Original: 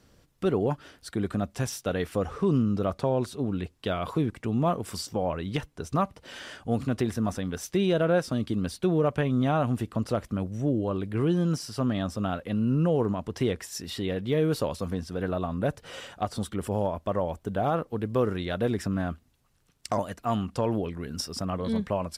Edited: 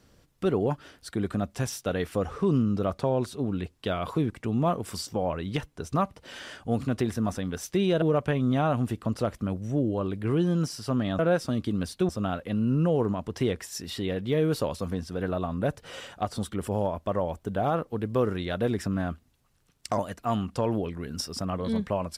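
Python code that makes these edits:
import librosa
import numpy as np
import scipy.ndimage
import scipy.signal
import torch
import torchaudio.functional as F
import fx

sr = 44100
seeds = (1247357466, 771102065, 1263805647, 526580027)

y = fx.edit(x, sr, fx.move(start_s=8.02, length_s=0.9, to_s=12.09), tone=tone)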